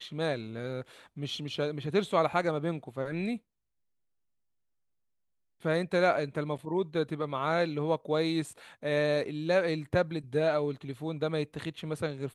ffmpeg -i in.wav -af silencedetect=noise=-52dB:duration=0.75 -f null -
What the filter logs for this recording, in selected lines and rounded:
silence_start: 3.38
silence_end: 5.61 | silence_duration: 2.23